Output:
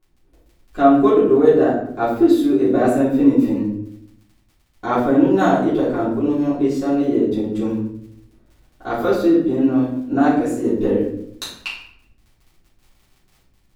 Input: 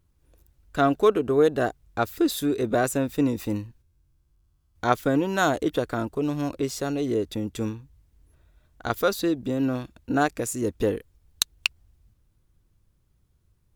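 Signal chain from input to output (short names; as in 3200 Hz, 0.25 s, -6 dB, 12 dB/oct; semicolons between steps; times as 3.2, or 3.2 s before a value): EQ curve 140 Hz 0 dB, 240 Hz +12 dB, 8700 Hz -6 dB; crackle 25/s -35 dBFS; shoebox room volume 140 m³, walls mixed, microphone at 3.2 m; gain -12 dB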